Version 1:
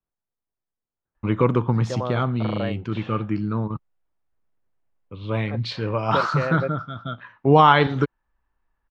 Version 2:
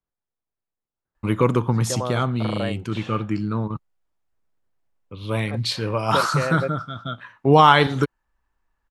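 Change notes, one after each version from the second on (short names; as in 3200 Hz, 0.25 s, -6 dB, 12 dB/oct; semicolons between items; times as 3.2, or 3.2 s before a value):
master: remove air absorption 200 m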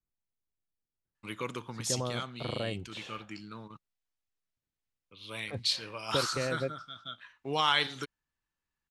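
first voice: add band-pass 3400 Hz, Q 0.52; master: add bell 990 Hz -10.5 dB 2.9 oct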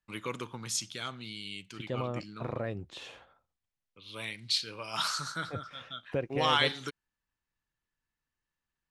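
first voice: entry -1.15 s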